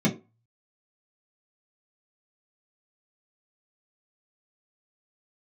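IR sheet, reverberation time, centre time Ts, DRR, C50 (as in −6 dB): 0.30 s, 17 ms, −5.0 dB, 12.0 dB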